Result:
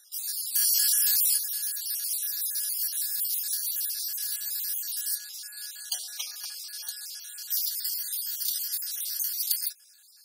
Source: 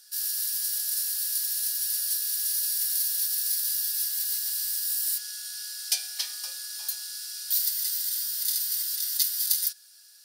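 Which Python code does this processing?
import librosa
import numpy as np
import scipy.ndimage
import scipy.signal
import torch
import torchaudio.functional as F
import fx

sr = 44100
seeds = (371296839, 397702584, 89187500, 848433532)

y = fx.spec_dropout(x, sr, seeds[0], share_pct=46)
y = fx.env_flatten(y, sr, amount_pct=100, at=(0.54, 1.36), fade=0.02)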